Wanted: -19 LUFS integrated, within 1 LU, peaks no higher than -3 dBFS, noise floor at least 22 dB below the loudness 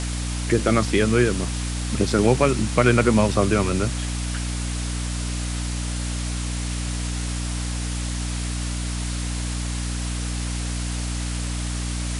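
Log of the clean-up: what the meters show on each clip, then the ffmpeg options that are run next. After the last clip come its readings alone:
hum 60 Hz; harmonics up to 300 Hz; hum level -24 dBFS; noise floor -27 dBFS; noise floor target -46 dBFS; loudness -24.0 LUFS; peak -3.0 dBFS; loudness target -19.0 LUFS
-> -af "bandreject=f=60:t=h:w=6,bandreject=f=120:t=h:w=6,bandreject=f=180:t=h:w=6,bandreject=f=240:t=h:w=6,bandreject=f=300:t=h:w=6"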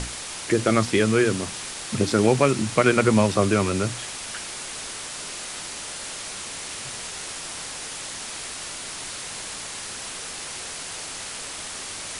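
hum none; noise floor -35 dBFS; noise floor target -48 dBFS
-> -af "afftdn=nr=13:nf=-35"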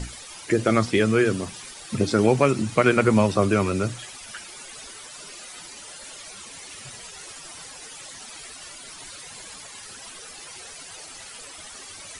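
noise floor -42 dBFS; noise floor target -44 dBFS
-> -af "afftdn=nr=6:nf=-42"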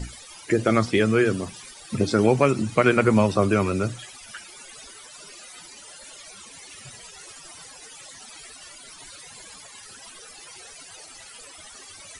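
noise floor -45 dBFS; loudness -21.5 LUFS; peak -4.5 dBFS; loudness target -19.0 LUFS
-> -af "volume=2.5dB,alimiter=limit=-3dB:level=0:latency=1"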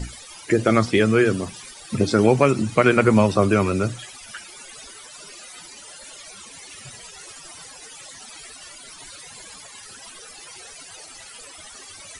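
loudness -19.0 LUFS; peak -3.0 dBFS; noise floor -43 dBFS

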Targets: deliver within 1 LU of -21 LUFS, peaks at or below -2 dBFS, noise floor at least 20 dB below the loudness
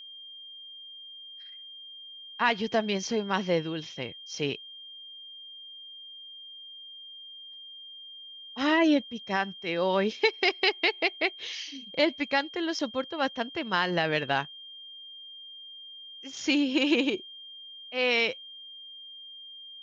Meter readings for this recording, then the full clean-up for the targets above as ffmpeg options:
steady tone 3200 Hz; tone level -43 dBFS; loudness -28.0 LUFS; peak -11.0 dBFS; loudness target -21.0 LUFS
-> -af "bandreject=f=3.2k:w=30"
-af "volume=7dB"

